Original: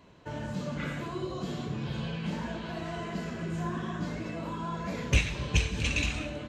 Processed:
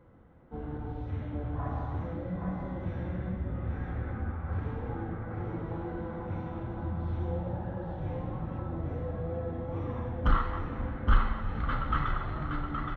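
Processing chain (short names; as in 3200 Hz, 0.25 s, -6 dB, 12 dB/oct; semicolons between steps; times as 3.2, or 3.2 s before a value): tone controls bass -1 dB, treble -14 dB; echo 0.41 s -4.5 dB; speed mistake 15 ips tape played at 7.5 ips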